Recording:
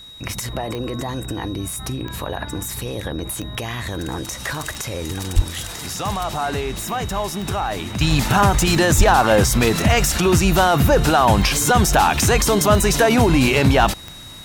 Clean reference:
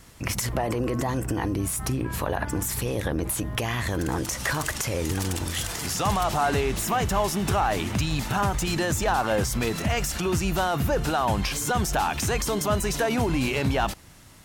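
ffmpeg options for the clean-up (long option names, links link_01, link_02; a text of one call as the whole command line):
ffmpeg -i in.wav -filter_complex "[0:a]adeclick=threshold=4,bandreject=frequency=3800:width=30,asplit=3[link_01][link_02][link_03];[link_01]afade=type=out:start_time=5.35:duration=0.02[link_04];[link_02]highpass=frequency=140:width=0.5412,highpass=frequency=140:width=1.3066,afade=type=in:start_time=5.35:duration=0.02,afade=type=out:start_time=5.47:duration=0.02[link_05];[link_03]afade=type=in:start_time=5.47:duration=0.02[link_06];[link_04][link_05][link_06]amix=inputs=3:normalize=0,asplit=3[link_07][link_08][link_09];[link_07]afade=type=out:start_time=8.97:duration=0.02[link_10];[link_08]highpass=frequency=140:width=0.5412,highpass=frequency=140:width=1.3066,afade=type=in:start_time=8.97:duration=0.02,afade=type=out:start_time=9.09:duration=0.02[link_11];[link_09]afade=type=in:start_time=9.09:duration=0.02[link_12];[link_10][link_11][link_12]amix=inputs=3:normalize=0,asetnsamples=nb_out_samples=441:pad=0,asendcmd='8.01 volume volume -9.5dB',volume=0dB" out.wav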